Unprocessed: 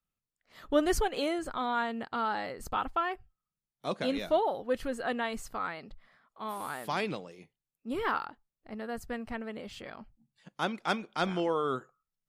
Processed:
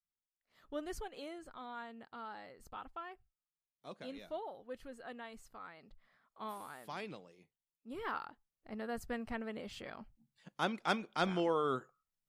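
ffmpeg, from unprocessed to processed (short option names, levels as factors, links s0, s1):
-af "volume=1.58,afade=t=in:st=5.73:d=0.7:silence=0.298538,afade=t=out:st=6.43:d=0.24:silence=0.446684,afade=t=in:st=7.9:d=0.9:silence=0.354813"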